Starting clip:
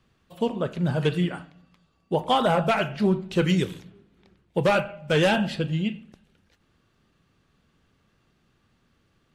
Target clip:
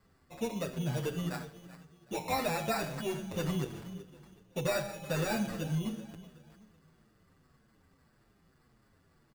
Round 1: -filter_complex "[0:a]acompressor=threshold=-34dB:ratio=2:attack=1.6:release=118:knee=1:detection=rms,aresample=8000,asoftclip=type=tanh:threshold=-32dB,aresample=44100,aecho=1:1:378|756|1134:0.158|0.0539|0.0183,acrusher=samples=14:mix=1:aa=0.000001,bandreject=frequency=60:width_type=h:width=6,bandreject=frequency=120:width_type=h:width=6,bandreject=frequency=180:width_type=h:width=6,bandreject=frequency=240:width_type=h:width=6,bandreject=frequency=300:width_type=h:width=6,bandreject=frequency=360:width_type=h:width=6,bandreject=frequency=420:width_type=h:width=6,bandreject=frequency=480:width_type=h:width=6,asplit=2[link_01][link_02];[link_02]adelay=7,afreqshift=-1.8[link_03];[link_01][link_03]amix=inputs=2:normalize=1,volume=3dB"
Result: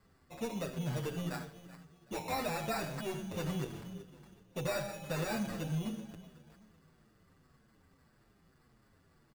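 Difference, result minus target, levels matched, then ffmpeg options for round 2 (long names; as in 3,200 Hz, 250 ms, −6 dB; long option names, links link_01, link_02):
soft clipping: distortion +10 dB
-filter_complex "[0:a]acompressor=threshold=-34dB:ratio=2:attack=1.6:release=118:knee=1:detection=rms,aresample=8000,asoftclip=type=tanh:threshold=-24.5dB,aresample=44100,aecho=1:1:378|756|1134:0.158|0.0539|0.0183,acrusher=samples=14:mix=1:aa=0.000001,bandreject=frequency=60:width_type=h:width=6,bandreject=frequency=120:width_type=h:width=6,bandreject=frequency=180:width_type=h:width=6,bandreject=frequency=240:width_type=h:width=6,bandreject=frequency=300:width_type=h:width=6,bandreject=frequency=360:width_type=h:width=6,bandreject=frequency=420:width_type=h:width=6,bandreject=frequency=480:width_type=h:width=6,asplit=2[link_01][link_02];[link_02]adelay=7,afreqshift=-1.8[link_03];[link_01][link_03]amix=inputs=2:normalize=1,volume=3dB"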